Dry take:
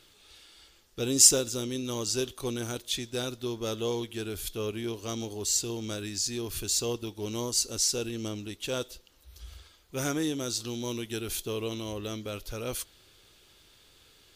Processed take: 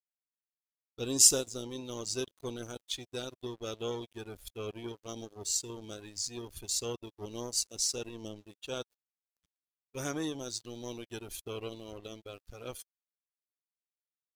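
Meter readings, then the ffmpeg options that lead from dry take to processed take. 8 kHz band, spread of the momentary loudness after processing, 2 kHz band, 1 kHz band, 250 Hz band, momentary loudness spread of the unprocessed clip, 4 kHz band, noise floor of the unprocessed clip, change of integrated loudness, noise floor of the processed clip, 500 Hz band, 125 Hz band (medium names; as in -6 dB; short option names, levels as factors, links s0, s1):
-4.0 dB, 14 LU, -7.0 dB, -5.5 dB, -7.5 dB, 10 LU, -5.0 dB, -60 dBFS, -4.0 dB, under -85 dBFS, -6.0 dB, -8.5 dB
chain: -af "aeval=exprs='sgn(val(0))*max(abs(val(0))-0.0126,0)':c=same,afftdn=nr=12:nf=-44,volume=0.75"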